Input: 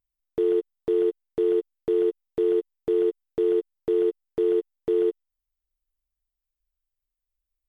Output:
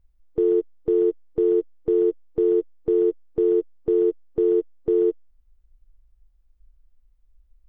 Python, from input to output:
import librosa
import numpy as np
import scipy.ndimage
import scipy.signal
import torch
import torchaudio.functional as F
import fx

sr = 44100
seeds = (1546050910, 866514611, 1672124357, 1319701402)

p1 = fx.hpss(x, sr, part='harmonic', gain_db=4)
p2 = fx.over_compress(p1, sr, threshold_db=-32.0, ratio=-1.0)
p3 = p1 + (p2 * librosa.db_to_amplitude(-1.5))
p4 = fx.tilt_eq(p3, sr, slope=-3.5)
y = p4 * librosa.db_to_amplitude(-7.0)